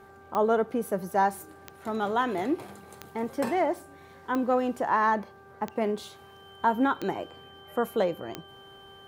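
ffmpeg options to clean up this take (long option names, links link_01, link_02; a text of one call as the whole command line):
ffmpeg -i in.wav -af "adeclick=threshold=4,bandreject=frequency=392.6:width_type=h:width=4,bandreject=frequency=785.2:width_type=h:width=4,bandreject=frequency=1177.8:width_type=h:width=4,bandreject=frequency=1570.4:width_type=h:width=4,bandreject=frequency=3100:width=30" out.wav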